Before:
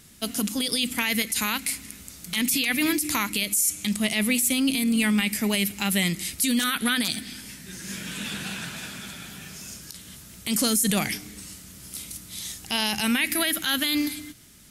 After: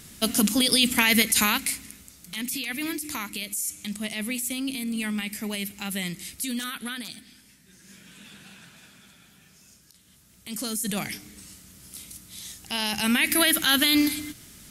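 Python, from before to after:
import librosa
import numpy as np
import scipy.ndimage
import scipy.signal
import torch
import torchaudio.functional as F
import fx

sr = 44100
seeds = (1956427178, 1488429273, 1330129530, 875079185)

y = fx.gain(x, sr, db=fx.line((1.41, 5.0), (2.13, -7.0), (6.55, -7.0), (7.48, -15.0), (9.99, -15.0), (10.99, -5.0), (12.57, -5.0), (13.44, 4.0)))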